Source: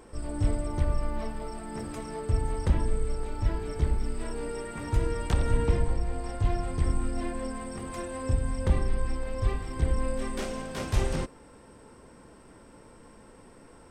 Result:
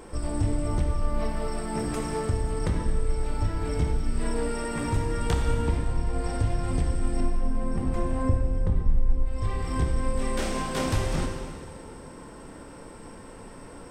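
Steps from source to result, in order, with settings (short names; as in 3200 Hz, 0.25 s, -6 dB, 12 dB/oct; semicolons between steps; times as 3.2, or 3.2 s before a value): 7.2–9.26 tilt -3 dB/oct; compressor 4:1, threshold -30 dBFS, peak gain reduction 21.5 dB; plate-style reverb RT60 1.9 s, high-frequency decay 0.95×, DRR 2 dB; gain +6 dB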